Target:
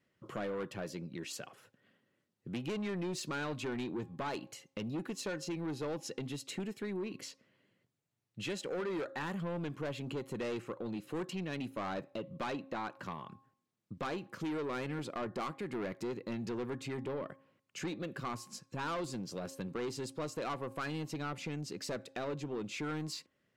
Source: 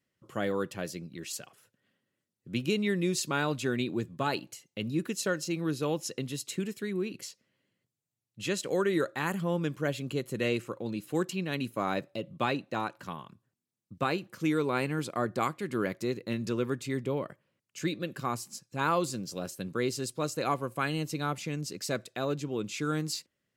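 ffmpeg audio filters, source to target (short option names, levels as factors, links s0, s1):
-af "lowpass=f=2400:p=1,lowshelf=f=170:g=-5,asoftclip=type=tanh:threshold=0.0266,bandreject=f=270:t=h:w=4,bandreject=f=540:t=h:w=4,bandreject=f=810:t=h:w=4,bandreject=f=1080:t=h:w=4,acompressor=threshold=0.00316:ratio=2,volume=2.24"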